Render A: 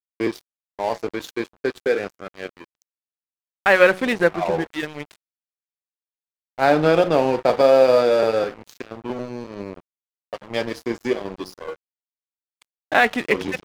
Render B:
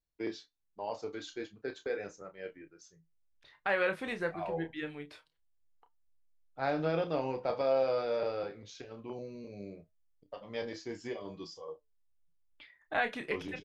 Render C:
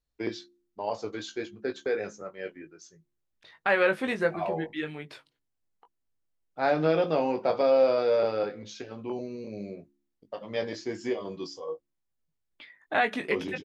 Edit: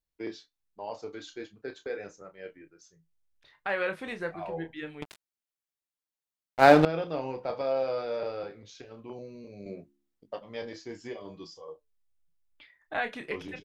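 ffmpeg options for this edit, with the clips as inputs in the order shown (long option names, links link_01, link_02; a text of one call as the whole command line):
ffmpeg -i take0.wav -i take1.wav -i take2.wav -filter_complex "[1:a]asplit=3[link_01][link_02][link_03];[link_01]atrim=end=5.022[link_04];[0:a]atrim=start=5.018:end=6.852[link_05];[link_02]atrim=start=6.848:end=9.662[link_06];[2:a]atrim=start=9.658:end=10.402[link_07];[link_03]atrim=start=10.398[link_08];[link_04][link_05]acrossfade=duration=0.004:curve1=hsin:curve2=hsin[link_09];[link_09][link_06]acrossfade=duration=0.004:curve1=hsin:curve2=hsin[link_10];[link_10][link_07]acrossfade=duration=0.004:curve1=hsin:curve2=hsin[link_11];[link_11][link_08]acrossfade=duration=0.004:curve1=hsin:curve2=hsin" out.wav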